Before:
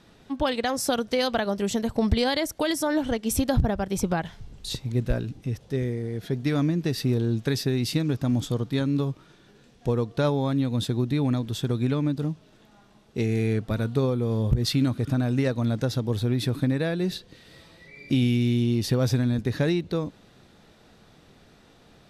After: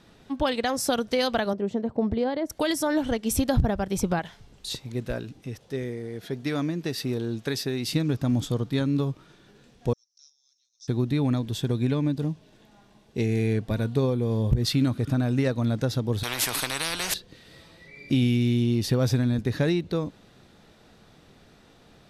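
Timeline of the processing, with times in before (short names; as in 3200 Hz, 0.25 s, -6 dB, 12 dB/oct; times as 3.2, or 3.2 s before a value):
1.53–2.5 band-pass 370 Hz, Q 0.67
4.19–7.87 low shelf 180 Hz -11.5 dB
9.93–10.88 Butterworth band-pass 5700 Hz, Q 6.2
11.42–14.57 notch 1300 Hz, Q 6.6
16.23–17.14 spectral compressor 10:1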